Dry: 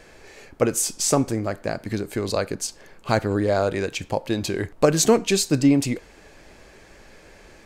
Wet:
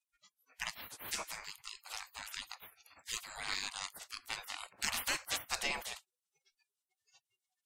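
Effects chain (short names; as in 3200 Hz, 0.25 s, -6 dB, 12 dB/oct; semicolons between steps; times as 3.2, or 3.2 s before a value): spectral gate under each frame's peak -30 dB weak; spectral noise reduction 28 dB; gain +3 dB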